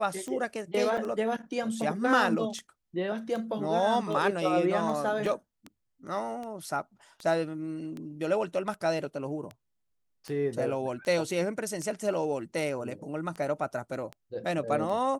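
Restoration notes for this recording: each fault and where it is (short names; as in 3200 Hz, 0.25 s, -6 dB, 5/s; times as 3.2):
tick 78 rpm -26 dBFS
0.97–0.98 gap 5.4 ms
5.26 gap 3.1 ms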